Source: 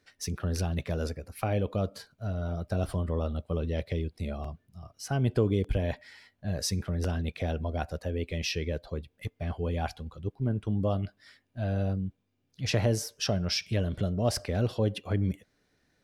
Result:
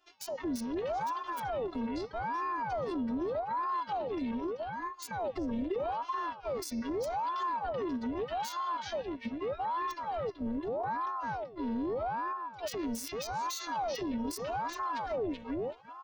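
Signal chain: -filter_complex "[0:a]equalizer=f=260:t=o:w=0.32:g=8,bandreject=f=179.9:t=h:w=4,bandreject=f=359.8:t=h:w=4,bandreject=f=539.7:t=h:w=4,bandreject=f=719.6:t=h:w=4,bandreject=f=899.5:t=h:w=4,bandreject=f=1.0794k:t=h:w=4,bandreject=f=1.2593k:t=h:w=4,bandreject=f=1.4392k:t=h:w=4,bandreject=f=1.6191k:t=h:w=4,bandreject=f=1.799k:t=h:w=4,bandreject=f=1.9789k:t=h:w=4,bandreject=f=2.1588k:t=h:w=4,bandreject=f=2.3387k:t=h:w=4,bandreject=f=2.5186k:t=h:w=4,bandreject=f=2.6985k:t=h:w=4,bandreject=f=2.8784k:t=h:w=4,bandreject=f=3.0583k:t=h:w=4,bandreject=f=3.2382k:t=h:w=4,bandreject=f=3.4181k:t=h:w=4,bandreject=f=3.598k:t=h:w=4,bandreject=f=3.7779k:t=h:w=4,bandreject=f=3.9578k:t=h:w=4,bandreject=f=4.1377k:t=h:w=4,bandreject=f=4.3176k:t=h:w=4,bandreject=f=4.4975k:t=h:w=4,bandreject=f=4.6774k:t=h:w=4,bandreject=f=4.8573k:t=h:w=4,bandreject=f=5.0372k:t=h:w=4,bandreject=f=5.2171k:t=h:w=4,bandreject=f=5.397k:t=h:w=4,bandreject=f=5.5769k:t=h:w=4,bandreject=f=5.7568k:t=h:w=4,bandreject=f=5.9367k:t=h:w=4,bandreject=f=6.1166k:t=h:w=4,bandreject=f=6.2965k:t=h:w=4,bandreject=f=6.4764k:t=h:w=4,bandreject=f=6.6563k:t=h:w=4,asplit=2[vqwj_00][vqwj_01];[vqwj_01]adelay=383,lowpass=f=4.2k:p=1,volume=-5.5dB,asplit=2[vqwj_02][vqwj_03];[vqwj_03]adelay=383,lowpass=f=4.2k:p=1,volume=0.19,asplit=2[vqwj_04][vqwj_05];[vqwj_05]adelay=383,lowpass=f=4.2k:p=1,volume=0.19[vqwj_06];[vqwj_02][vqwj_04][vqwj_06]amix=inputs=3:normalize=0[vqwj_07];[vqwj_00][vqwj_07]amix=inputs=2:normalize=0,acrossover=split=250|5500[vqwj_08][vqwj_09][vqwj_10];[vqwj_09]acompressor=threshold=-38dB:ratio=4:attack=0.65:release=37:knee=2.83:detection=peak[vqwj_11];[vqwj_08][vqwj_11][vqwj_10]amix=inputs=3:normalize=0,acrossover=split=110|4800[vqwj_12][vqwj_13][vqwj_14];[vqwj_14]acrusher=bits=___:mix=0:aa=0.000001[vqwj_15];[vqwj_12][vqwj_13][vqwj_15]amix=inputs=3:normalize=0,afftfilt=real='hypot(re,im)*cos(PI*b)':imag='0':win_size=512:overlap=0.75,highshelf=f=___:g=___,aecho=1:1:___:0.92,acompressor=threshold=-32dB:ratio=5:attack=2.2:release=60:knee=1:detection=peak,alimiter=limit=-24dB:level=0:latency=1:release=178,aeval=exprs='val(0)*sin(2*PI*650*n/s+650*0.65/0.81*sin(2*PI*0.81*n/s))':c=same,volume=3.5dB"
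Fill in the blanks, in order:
5, 3.8k, 7, 4.2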